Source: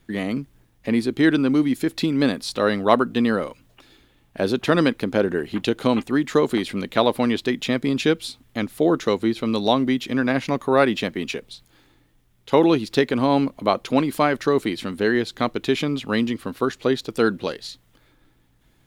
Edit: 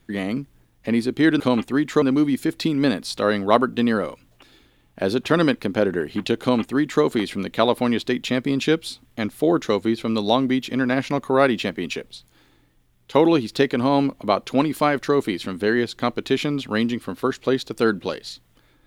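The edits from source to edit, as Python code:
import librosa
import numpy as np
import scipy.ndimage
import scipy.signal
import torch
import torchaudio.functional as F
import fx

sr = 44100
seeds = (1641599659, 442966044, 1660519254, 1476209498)

y = fx.edit(x, sr, fx.duplicate(start_s=5.79, length_s=0.62, to_s=1.4), tone=tone)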